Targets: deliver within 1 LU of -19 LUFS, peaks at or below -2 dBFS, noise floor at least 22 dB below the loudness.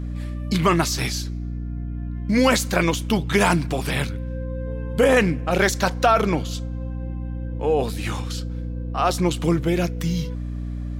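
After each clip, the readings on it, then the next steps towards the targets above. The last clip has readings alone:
hum 60 Hz; harmonics up to 300 Hz; hum level -26 dBFS; loudness -23.0 LUFS; peak -5.0 dBFS; loudness target -19.0 LUFS
-> de-hum 60 Hz, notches 5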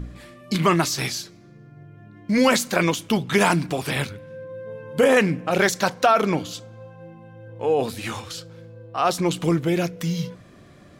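hum none; loudness -22.0 LUFS; peak -5.5 dBFS; loudness target -19.0 LUFS
-> gain +3 dB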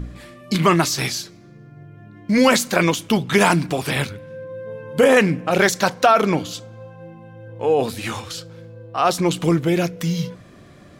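loudness -19.0 LUFS; peak -2.5 dBFS; noise floor -45 dBFS

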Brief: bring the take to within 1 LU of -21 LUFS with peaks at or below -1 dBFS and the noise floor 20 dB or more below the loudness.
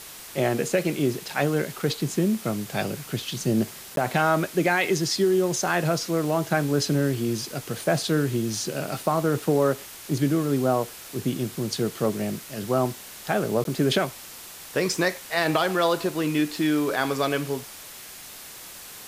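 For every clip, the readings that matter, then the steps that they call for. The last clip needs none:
dropouts 2; longest dropout 12 ms; noise floor -42 dBFS; noise floor target -45 dBFS; loudness -25.0 LUFS; peak -10.0 dBFS; loudness target -21.0 LUFS
-> interpolate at 3.96/13.64, 12 ms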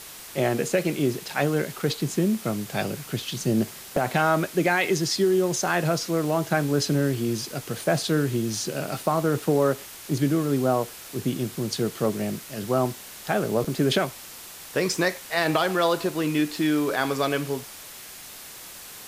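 dropouts 0; noise floor -42 dBFS; noise floor target -45 dBFS
-> noise print and reduce 6 dB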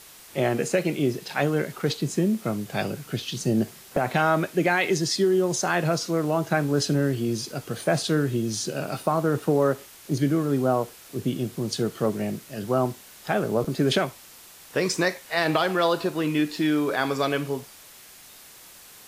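noise floor -48 dBFS; loudness -25.5 LUFS; peak -10.0 dBFS; loudness target -21.0 LUFS
-> gain +4.5 dB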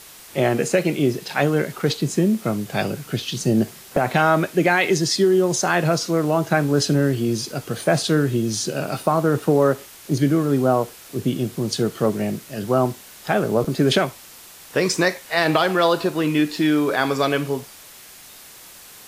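loudness -21.0 LUFS; peak -5.5 dBFS; noise floor -44 dBFS

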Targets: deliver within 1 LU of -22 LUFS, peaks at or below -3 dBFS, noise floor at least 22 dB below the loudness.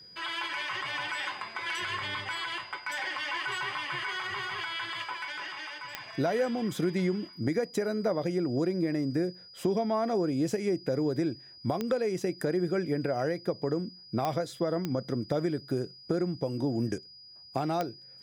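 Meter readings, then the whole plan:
clicks 5; steady tone 4900 Hz; tone level -49 dBFS; loudness -31.5 LUFS; peak -14.0 dBFS; loudness target -22.0 LUFS
-> de-click; notch 4900 Hz, Q 30; gain +9.5 dB

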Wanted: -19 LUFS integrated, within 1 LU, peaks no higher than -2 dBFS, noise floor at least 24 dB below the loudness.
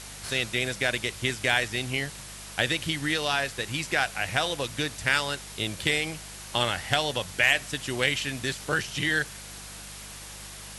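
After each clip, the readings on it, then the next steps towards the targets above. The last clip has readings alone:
hum 50 Hz; harmonics up to 200 Hz; hum level -47 dBFS; noise floor -42 dBFS; noise floor target -51 dBFS; loudness -27.0 LUFS; peak -8.5 dBFS; loudness target -19.0 LUFS
-> de-hum 50 Hz, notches 4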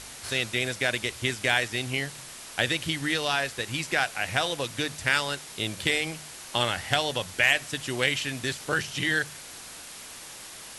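hum none; noise floor -43 dBFS; noise floor target -51 dBFS
-> denoiser 8 dB, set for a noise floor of -43 dBFS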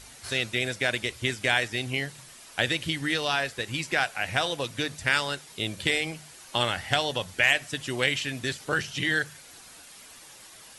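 noise floor -49 dBFS; noise floor target -51 dBFS
-> denoiser 6 dB, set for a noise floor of -49 dBFS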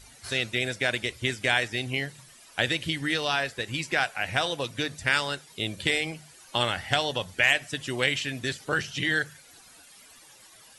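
noise floor -53 dBFS; loudness -27.5 LUFS; peak -8.5 dBFS; loudness target -19.0 LUFS
-> gain +8.5 dB; limiter -2 dBFS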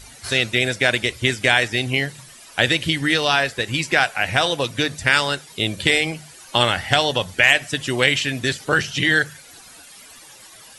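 loudness -19.0 LUFS; peak -2.0 dBFS; noise floor -44 dBFS

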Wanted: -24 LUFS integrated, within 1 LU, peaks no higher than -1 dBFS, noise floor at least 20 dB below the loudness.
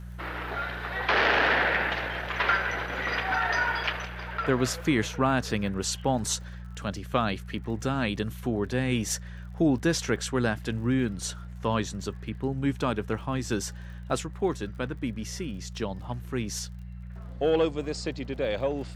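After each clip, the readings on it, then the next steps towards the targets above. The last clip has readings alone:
ticks 42/s; hum 60 Hz; harmonics up to 180 Hz; hum level -38 dBFS; loudness -28.5 LUFS; peak -8.5 dBFS; loudness target -24.0 LUFS
-> de-click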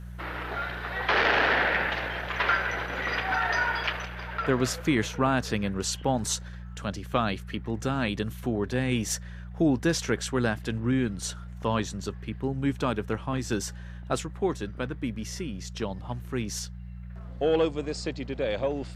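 ticks 0/s; hum 60 Hz; harmonics up to 180 Hz; hum level -38 dBFS
-> de-hum 60 Hz, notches 3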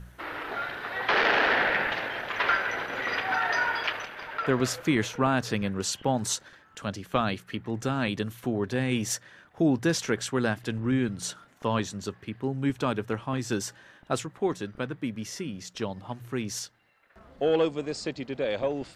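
hum none; loudness -28.5 LUFS; peak -9.0 dBFS; loudness target -24.0 LUFS
-> gain +4.5 dB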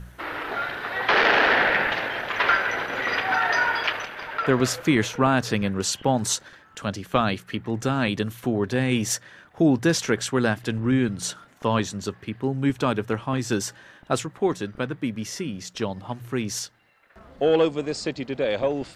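loudness -24.0 LUFS; peak -4.5 dBFS; noise floor -54 dBFS

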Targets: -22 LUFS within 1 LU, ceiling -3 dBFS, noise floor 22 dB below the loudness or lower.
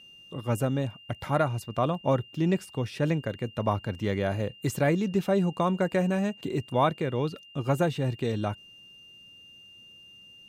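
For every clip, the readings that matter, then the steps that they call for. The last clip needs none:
steady tone 2800 Hz; tone level -49 dBFS; loudness -28.5 LUFS; peak -11.0 dBFS; loudness target -22.0 LUFS
-> notch 2800 Hz, Q 30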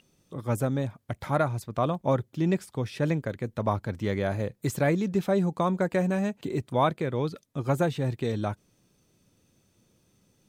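steady tone none; loudness -28.5 LUFS; peak -11.0 dBFS; loudness target -22.0 LUFS
-> gain +6.5 dB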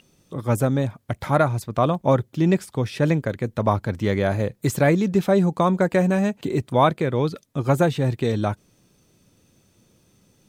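loudness -22.0 LUFS; peak -4.5 dBFS; noise floor -62 dBFS

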